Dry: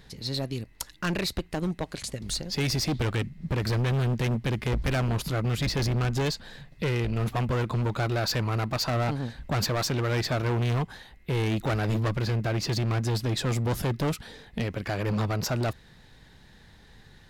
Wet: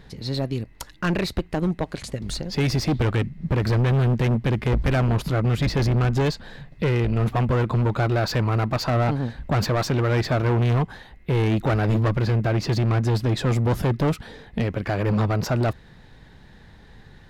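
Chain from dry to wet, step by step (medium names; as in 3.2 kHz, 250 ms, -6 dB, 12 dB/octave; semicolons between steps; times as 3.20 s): treble shelf 3.1 kHz -10.5 dB; trim +6 dB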